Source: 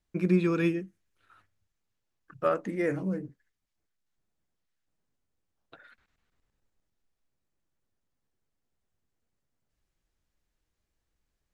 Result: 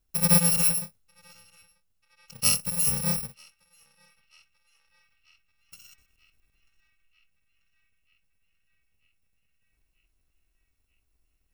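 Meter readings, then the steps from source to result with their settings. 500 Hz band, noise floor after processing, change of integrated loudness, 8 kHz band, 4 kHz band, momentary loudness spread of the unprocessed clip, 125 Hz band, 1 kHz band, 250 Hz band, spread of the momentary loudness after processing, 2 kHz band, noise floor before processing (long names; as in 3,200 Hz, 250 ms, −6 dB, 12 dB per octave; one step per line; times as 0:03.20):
−9.5 dB, −73 dBFS, +7.0 dB, can't be measured, +20.0 dB, 12 LU, +1.5 dB, −2.0 dB, −4.0 dB, 12 LU, +1.0 dB, −82 dBFS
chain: samples in bit-reversed order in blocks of 128 samples
low-shelf EQ 110 Hz +6 dB
on a send: feedback echo with a band-pass in the loop 939 ms, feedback 76%, band-pass 2,200 Hz, level −23 dB
on the sum: level +3.5 dB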